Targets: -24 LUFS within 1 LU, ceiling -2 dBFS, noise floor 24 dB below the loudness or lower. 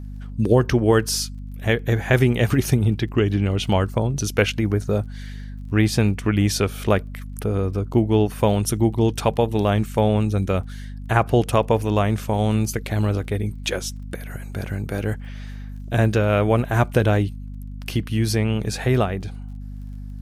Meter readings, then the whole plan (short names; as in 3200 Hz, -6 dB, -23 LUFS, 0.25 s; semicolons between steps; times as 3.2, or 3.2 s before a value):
ticks 26/s; hum 50 Hz; harmonics up to 250 Hz; hum level -31 dBFS; loudness -21.5 LUFS; peak -3.5 dBFS; loudness target -24.0 LUFS
-> de-click; notches 50/100/150/200/250 Hz; gain -2.5 dB